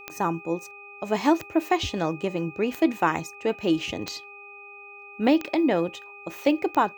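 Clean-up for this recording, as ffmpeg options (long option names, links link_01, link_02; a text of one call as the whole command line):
ffmpeg -i in.wav -af "adeclick=threshold=4,bandreject=frequency=404.2:width_type=h:width=4,bandreject=frequency=808.4:width_type=h:width=4,bandreject=frequency=1212.6:width_type=h:width=4,bandreject=frequency=2500:width=30" out.wav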